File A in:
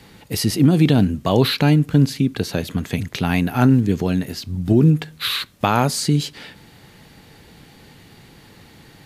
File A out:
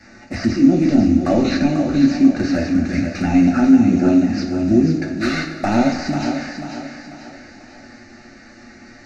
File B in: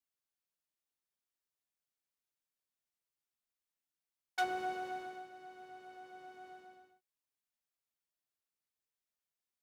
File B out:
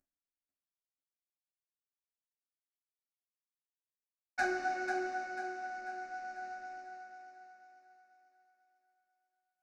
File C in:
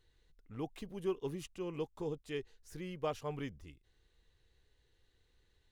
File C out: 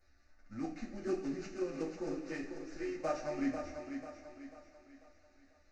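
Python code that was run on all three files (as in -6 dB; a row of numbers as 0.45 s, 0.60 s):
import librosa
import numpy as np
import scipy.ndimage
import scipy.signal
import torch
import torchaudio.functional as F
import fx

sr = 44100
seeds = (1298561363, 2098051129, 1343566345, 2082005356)

p1 = fx.cvsd(x, sr, bps=32000)
p2 = fx.over_compress(p1, sr, threshold_db=-20.0, ratio=-1.0)
p3 = p1 + F.gain(torch.from_numpy(p2), -0.5).numpy()
p4 = fx.env_flanger(p3, sr, rest_ms=10.3, full_db=-10.0)
p5 = fx.fixed_phaser(p4, sr, hz=660.0, stages=8)
p6 = p5 + fx.echo_thinned(p5, sr, ms=492, feedback_pct=44, hz=160.0, wet_db=-7.0, dry=0)
y = fx.rev_double_slope(p6, sr, seeds[0], early_s=0.34, late_s=2.5, knee_db=-15, drr_db=0.0)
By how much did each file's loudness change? +2.0 LU, +4.0 LU, +1.5 LU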